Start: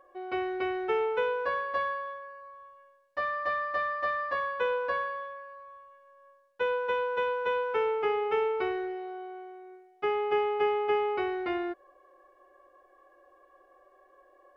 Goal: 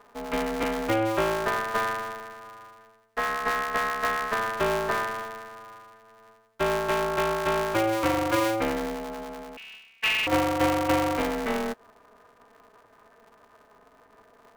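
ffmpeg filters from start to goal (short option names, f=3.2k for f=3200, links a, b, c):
-filter_complex "[0:a]asettb=1/sr,asplit=3[a][b][c];[a]atrim=end=0.634[d];[b]atrim=start=0.63:end=2.2,asetpts=PTS-STARTPTS,afade=t=in:d=0.004:c=qsin,afade=t=out:st=1.566:d=0.004:c=qsin,highpass=f=280:w=0.5412,highpass=f=280:w=1.3066[e];[c]atrim=start=2.196[f];[d][e]acrossfade=d=0.004:c1=hsin:c2=qsin[g];[g][f]acrossfade=d=0.004:c1=qsin:c2=hsin,asettb=1/sr,asplit=3[h][i][j];[h]atrim=end=9.574[k];[i]atrim=start=9.57:end=10.27,asetpts=PTS-STARTPTS,afade=t=in:d=0.004:c=qsin,afade=t=out:st=0.696:d=0.004:c=qsin,lowpass=f=2.6k:t=q:w=0.5098,lowpass=f=2.6k:t=q:w=0.6013,lowpass=f=2.6k:t=q:w=0.9,lowpass=f=2.6k:t=q:w=2.563,afreqshift=-3100[l];[j]atrim=start=10.266[m];[k][l]acrossfade=d=0.004:c1=hsin:c2=qsin[n];[n][m]acrossfade=d=0.004:c1=qsin:c2=hsin,aeval=exprs='val(0)*sgn(sin(2*PI*110*n/s))':c=same,volume=3.5dB"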